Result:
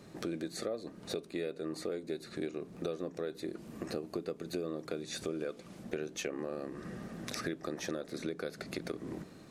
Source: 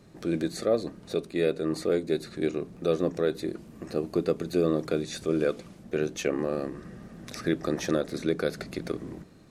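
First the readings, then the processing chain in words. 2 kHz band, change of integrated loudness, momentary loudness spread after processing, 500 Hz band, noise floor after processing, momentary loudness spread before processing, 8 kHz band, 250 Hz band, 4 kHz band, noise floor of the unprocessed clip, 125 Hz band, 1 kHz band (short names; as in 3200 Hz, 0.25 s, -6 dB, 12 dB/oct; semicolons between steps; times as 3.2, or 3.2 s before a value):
-7.0 dB, -10.5 dB, 5 LU, -11.0 dB, -53 dBFS, 10 LU, -4.0 dB, -10.0 dB, -5.0 dB, -51 dBFS, -10.5 dB, -8.0 dB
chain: low shelf 110 Hz -10 dB; compressor 6:1, threshold -38 dBFS, peak gain reduction 17 dB; gain +3 dB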